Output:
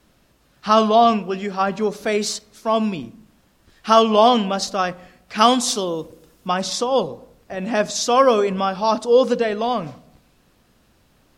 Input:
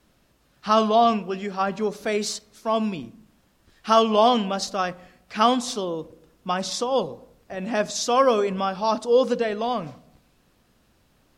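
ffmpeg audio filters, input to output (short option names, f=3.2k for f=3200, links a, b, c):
-filter_complex "[0:a]asettb=1/sr,asplit=3[a][b][c];[a]atrim=end=5.384[d];[b]atrim=start=5.38:end=6.48,asetpts=PTS-STARTPTS,afade=t=in:d=0.004:c=qsin,afade=t=out:st=1.096:d=0.004:c=qsin,highshelf=f=4.3k:g=8.5[e];[c]atrim=start=6.476[f];[d][e]acrossfade=d=0.004:c1=hsin:c2=qsin[g];[g][f]acrossfade=d=0.004:c1=qsin:c2=hsin,volume=4dB"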